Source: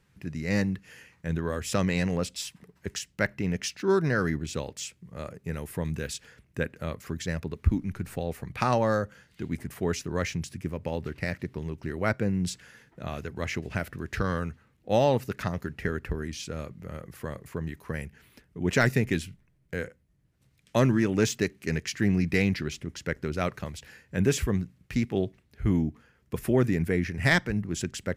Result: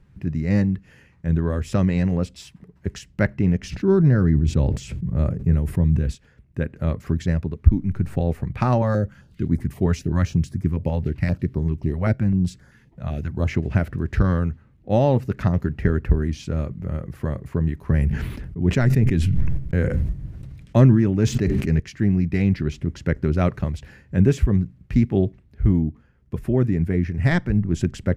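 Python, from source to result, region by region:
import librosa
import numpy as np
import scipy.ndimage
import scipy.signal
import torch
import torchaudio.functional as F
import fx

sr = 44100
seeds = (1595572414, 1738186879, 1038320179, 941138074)

y = fx.chain(x, sr, fx.low_shelf(hz=320.0, db=10.0),
    fx.sustainer(db_per_s=57.0), at=(3.63, 6.15))
y = fx.chain(y, sr, fx.high_shelf(hz=12000.0, db=6.0),
    fx.filter_held_notch(hz=7.7, low_hz=330.0, high_hz=2700.0), at=(8.82, 13.48))
y = fx.chain(y, sr, fx.gate_hold(open_db=-56.0, close_db=-62.0, hold_ms=71.0, range_db=-21, attack_ms=1.4, release_ms=100.0),
    fx.low_shelf(hz=170.0, db=4.5),
    fx.sustainer(db_per_s=32.0), at=(17.81, 21.8))
y = fx.tilt_eq(y, sr, slope=-3.0)
y = fx.notch(y, sr, hz=470.0, q=12.0)
y = fx.rider(y, sr, range_db=4, speed_s=0.5)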